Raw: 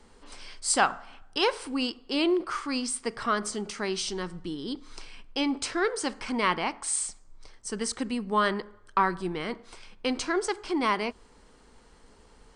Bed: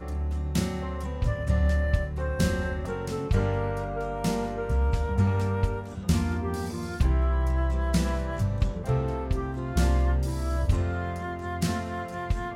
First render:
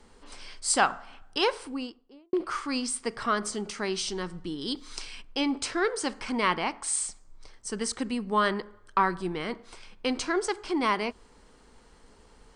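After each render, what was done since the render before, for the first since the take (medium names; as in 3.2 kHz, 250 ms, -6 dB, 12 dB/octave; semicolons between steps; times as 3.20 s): 1.37–2.33 s: studio fade out; 4.61–5.22 s: treble shelf 2.3 kHz +10 dB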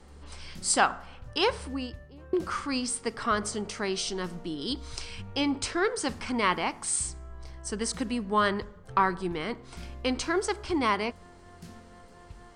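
add bed -20 dB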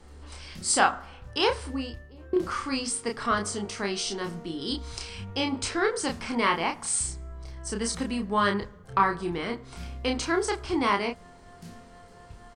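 doubling 30 ms -4 dB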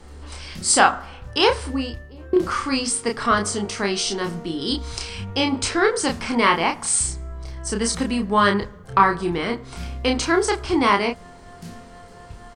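trim +7 dB; peak limiter -2 dBFS, peak gain reduction 1 dB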